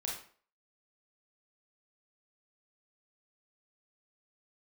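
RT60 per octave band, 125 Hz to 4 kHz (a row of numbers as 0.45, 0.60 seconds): 0.40, 0.45, 0.50, 0.45, 0.40, 0.35 seconds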